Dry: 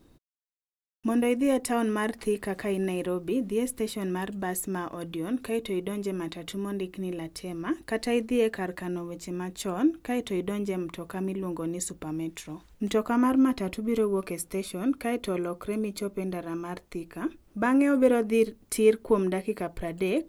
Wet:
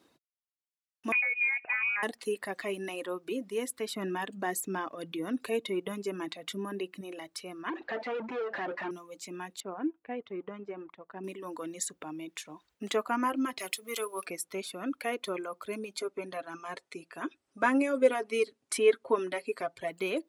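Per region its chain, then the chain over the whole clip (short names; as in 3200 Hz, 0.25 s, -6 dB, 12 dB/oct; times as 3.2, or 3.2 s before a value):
1.12–2.03 HPF 110 Hz + compressor 4:1, threshold -25 dBFS + inverted band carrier 2700 Hz
3.91–7.01 HPF 95 Hz + low shelf 310 Hz +9.5 dB
7.69–8.91 compressor 3:1, threshold -29 dBFS + overdrive pedal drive 33 dB, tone 1600 Hz, clips at -21 dBFS + tape spacing loss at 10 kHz 29 dB
9.6–11.24 G.711 law mismatch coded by A + tape spacing loss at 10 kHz 43 dB
13.59–14.26 tilt +4 dB/oct + notches 50/100/150/200/250/300/350/400/450/500 Hz
15.97–19.91 steep low-pass 11000 Hz 48 dB/oct + comb 7.4 ms, depth 54%
whole clip: reverb removal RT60 1.2 s; weighting filter A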